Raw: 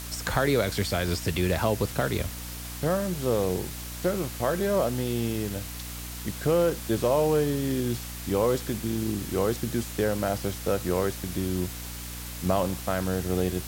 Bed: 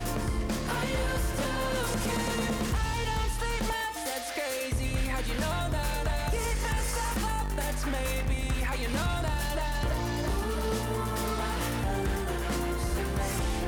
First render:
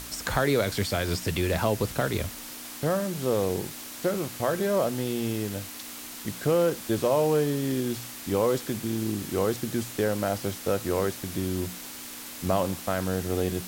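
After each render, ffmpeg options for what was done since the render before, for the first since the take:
-af "bandreject=f=60:t=h:w=6,bandreject=f=120:t=h:w=6,bandreject=f=180:t=h:w=6"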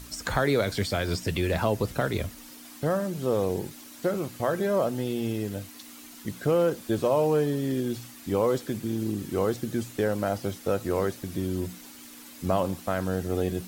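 -af "afftdn=nr=9:nf=-41"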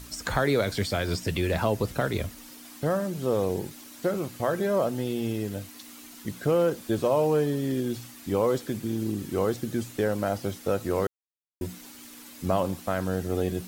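-filter_complex "[0:a]asplit=3[s0][s1][s2];[s0]atrim=end=11.07,asetpts=PTS-STARTPTS,afade=t=out:st=11.066:d=0.004:c=hsin[s3];[s1]atrim=start=11.07:end=11.61,asetpts=PTS-STARTPTS,volume=0[s4];[s2]atrim=start=11.61,asetpts=PTS-STARTPTS,afade=t=in:d=0.004:c=hsin[s5];[s3][s4][s5]concat=n=3:v=0:a=1"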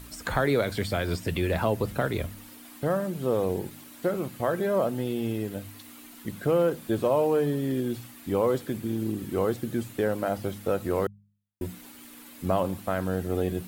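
-af "equalizer=f=5800:t=o:w=0.9:g=-7.5,bandreject=f=50.96:t=h:w=4,bandreject=f=101.92:t=h:w=4,bandreject=f=152.88:t=h:w=4,bandreject=f=203.84:t=h:w=4"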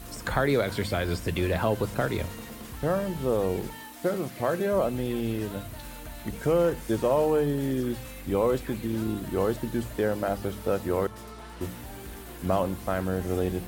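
-filter_complex "[1:a]volume=0.237[s0];[0:a][s0]amix=inputs=2:normalize=0"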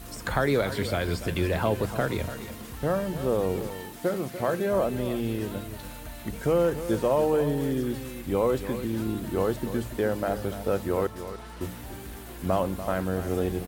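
-af "aecho=1:1:291:0.251"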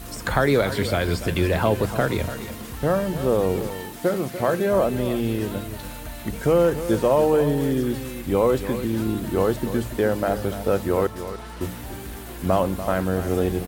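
-af "volume=1.78"

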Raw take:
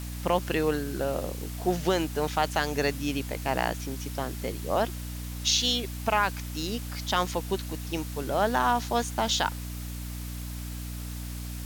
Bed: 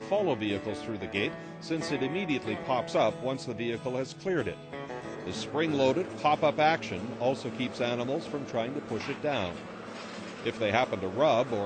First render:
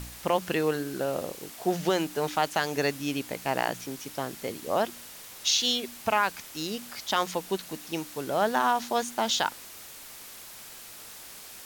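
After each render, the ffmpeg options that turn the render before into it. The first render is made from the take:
-af "bandreject=f=60:t=h:w=4,bandreject=f=120:t=h:w=4,bandreject=f=180:t=h:w=4,bandreject=f=240:t=h:w=4,bandreject=f=300:t=h:w=4"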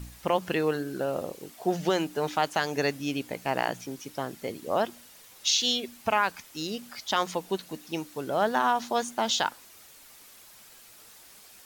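-af "afftdn=nr=8:nf=-45"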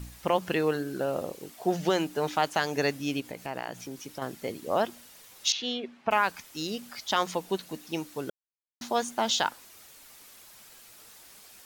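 -filter_complex "[0:a]asettb=1/sr,asplit=3[s0][s1][s2];[s0]atrim=end=3.204[s3];[s1]atrim=start=3.2:end=4.22,asetpts=PTS-STARTPTS,afade=t=in:d=0.004:c=qsin,afade=t=out:st=1.016:d=0.004:c=qsin,acompressor=threshold=0.0158:ratio=2:attack=3.2:release=140:knee=1:detection=peak[s4];[s2]atrim=start=4.216[s5];[s3][s4]acrossfade=d=0.004:c1=hsin:c2=qsin[s6];[s6][s5]acrossfade=d=0.004:c1=qsin:c2=hsin,asettb=1/sr,asplit=3[s7][s8][s9];[s7]atrim=end=5.524[s10];[s8]atrim=start=5.52:end=6.11,asetpts=PTS-STARTPTS,afade=t=in:d=0.004:c=qsin,afade=t=out:st=0.586:d=0.004:c=qsin,highpass=160,lowpass=2300[s11];[s9]atrim=start=6.106[s12];[s10][s11]acrossfade=d=0.004:c1=hsin:c2=qsin[s13];[s13][s12]acrossfade=d=0.004:c1=qsin:c2=hsin,asplit=3[s14][s15][s16];[s14]atrim=end=8.3,asetpts=PTS-STARTPTS,afade=t=out:st=8.296:d=0.004:c=hsin[s17];[s15]atrim=start=8.3:end=8.81,asetpts=PTS-STARTPTS,volume=0[s18];[s16]atrim=start=8.81,asetpts=PTS-STARTPTS,afade=t=in:d=0.004:c=hsin[s19];[s17][s18][s19]concat=n=3:v=0:a=1"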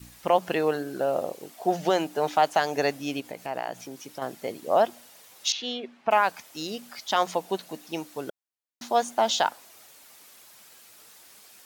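-af "highpass=f=160:p=1,adynamicequalizer=threshold=0.00794:dfrequency=690:dqfactor=1.8:tfrequency=690:tqfactor=1.8:attack=5:release=100:ratio=0.375:range=4:mode=boostabove:tftype=bell"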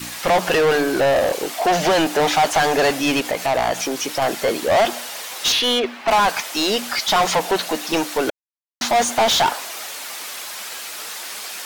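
-filter_complex "[0:a]acrusher=bits=11:mix=0:aa=0.000001,asplit=2[s0][s1];[s1]highpass=f=720:p=1,volume=35.5,asoftclip=type=tanh:threshold=0.355[s2];[s0][s2]amix=inputs=2:normalize=0,lowpass=f=5100:p=1,volume=0.501"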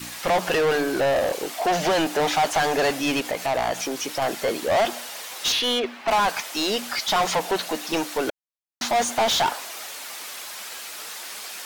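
-af "volume=0.596"

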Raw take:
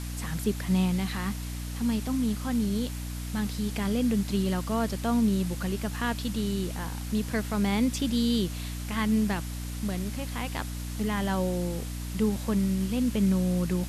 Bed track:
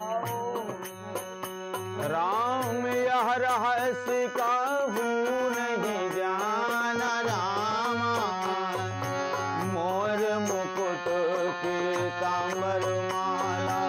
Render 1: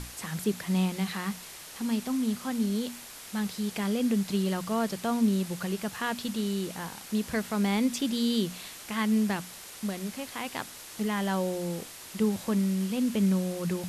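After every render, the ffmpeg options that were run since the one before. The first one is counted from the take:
-af "bandreject=f=60:t=h:w=6,bandreject=f=120:t=h:w=6,bandreject=f=180:t=h:w=6,bandreject=f=240:t=h:w=6,bandreject=f=300:t=h:w=6"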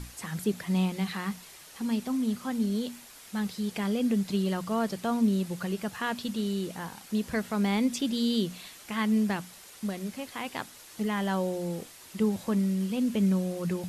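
-af "afftdn=nr=6:nf=-45"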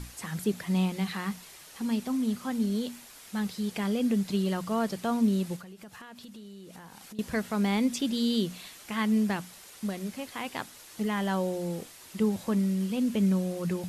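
-filter_complex "[0:a]asettb=1/sr,asplit=3[s0][s1][s2];[s0]atrim=end=5.564[s3];[s1]atrim=start=5.56:end=7.19,asetpts=PTS-STARTPTS,afade=t=in:d=0.004:c=qsin,afade=t=out:st=1.626:d=0.004:c=qsin,acompressor=threshold=0.00708:ratio=10:attack=3.2:release=140:knee=1:detection=peak[s4];[s2]atrim=start=7.186[s5];[s3][s4]acrossfade=d=0.004:c1=hsin:c2=qsin[s6];[s6][s5]acrossfade=d=0.004:c1=qsin:c2=hsin"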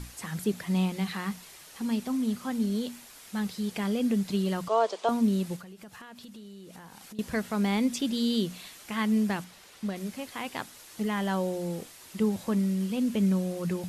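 -filter_complex "[0:a]asettb=1/sr,asplit=3[s0][s1][s2];[s0]atrim=end=4.684[s3];[s1]atrim=start=4.68:end=5.09,asetpts=PTS-STARTPTS,afade=t=in:d=0.004:c=qsin,afade=t=out:st=0.406:d=0.004:c=qsin,highpass=f=380:w=0.5412,highpass=f=380:w=1.3066,equalizer=f=450:t=q:w=4:g=6,equalizer=f=670:t=q:w=4:g=7,equalizer=f=1000:t=q:w=4:g=9,equalizer=f=1800:t=q:w=4:g=-4,equalizer=f=3400:t=q:w=4:g=4,lowpass=f=7700:w=0.5412,lowpass=f=7700:w=1.3066[s4];[s2]atrim=start=5.086[s5];[s3][s4]acrossfade=d=0.004:c1=hsin:c2=qsin[s6];[s6][s5]acrossfade=d=0.004:c1=qsin:c2=hsin,asettb=1/sr,asplit=3[s7][s8][s9];[s7]atrim=end=9.444[s10];[s8]atrim=start=9.44:end=9.96,asetpts=PTS-STARTPTS,afade=t=in:d=0.004:c=qsin,afade=t=out:st=0.516:d=0.004:c=qsin,acrossover=split=5300[s11][s12];[s12]acompressor=threshold=0.00141:ratio=4:attack=1:release=60[s13];[s11][s13]amix=inputs=2:normalize=0[s14];[s9]atrim=start=9.956[s15];[s10][s14]acrossfade=d=0.004:c1=hsin:c2=qsin[s16];[s16][s15]acrossfade=d=0.004:c1=qsin:c2=hsin"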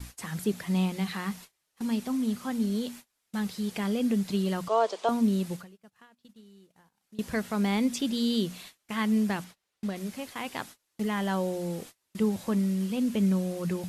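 -af "agate=range=0.0355:threshold=0.00631:ratio=16:detection=peak"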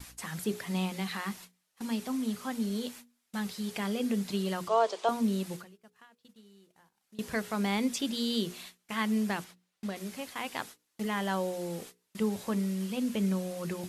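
-af "lowshelf=f=300:g=-6,bandreject=f=60:t=h:w=6,bandreject=f=120:t=h:w=6,bandreject=f=180:t=h:w=6,bandreject=f=240:t=h:w=6,bandreject=f=300:t=h:w=6,bandreject=f=360:t=h:w=6,bandreject=f=420:t=h:w=6,bandreject=f=480:t=h:w=6"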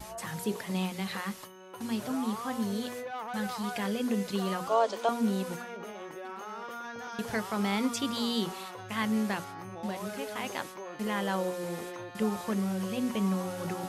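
-filter_complex "[1:a]volume=0.224[s0];[0:a][s0]amix=inputs=2:normalize=0"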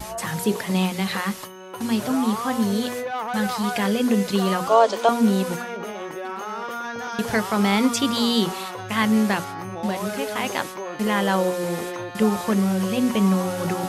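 -af "volume=3.16"

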